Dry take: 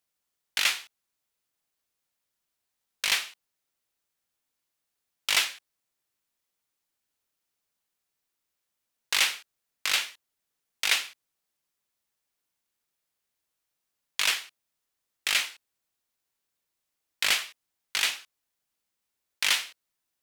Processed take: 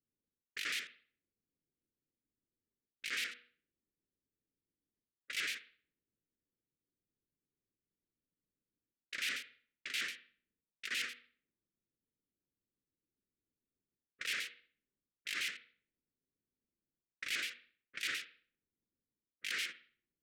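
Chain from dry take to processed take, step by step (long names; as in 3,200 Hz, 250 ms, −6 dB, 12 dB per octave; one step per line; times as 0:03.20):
pitch shifter gated in a rhythm −11.5 semitones, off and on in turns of 72 ms
hum removal 241.8 Hz, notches 2
low-pass that shuts in the quiet parts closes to 560 Hz, open at −27.5 dBFS
graphic EQ with 10 bands 250 Hz +4 dB, 1,000 Hz −5 dB, 2,000 Hz +6 dB
reversed playback
downward compressor 16 to 1, threshold −36 dBFS, peak gain reduction 21 dB
reversed playback
Butterworth band-reject 860 Hz, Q 0.78
convolution reverb, pre-delay 56 ms, DRR 13.5 dB
one half of a high-frequency compander decoder only
level +1 dB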